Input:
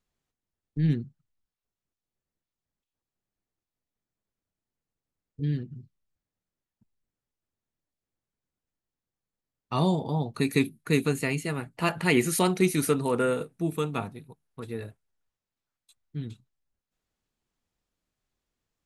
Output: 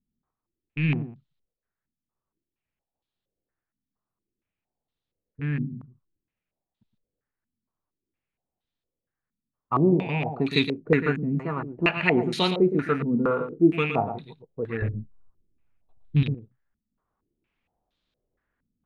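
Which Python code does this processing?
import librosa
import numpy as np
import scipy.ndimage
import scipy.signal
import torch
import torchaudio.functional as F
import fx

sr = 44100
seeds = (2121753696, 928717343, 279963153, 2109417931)

p1 = fx.rattle_buzz(x, sr, strikes_db=-32.0, level_db=-30.0)
p2 = fx.tilt_eq(p1, sr, slope=-4.0, at=(14.82, 16.23))
p3 = p2 + fx.echo_single(p2, sr, ms=116, db=-9.0, dry=0)
p4 = fx.rider(p3, sr, range_db=10, speed_s=2.0)
y = fx.filter_held_lowpass(p4, sr, hz=4.3, low_hz=230.0, high_hz=3700.0)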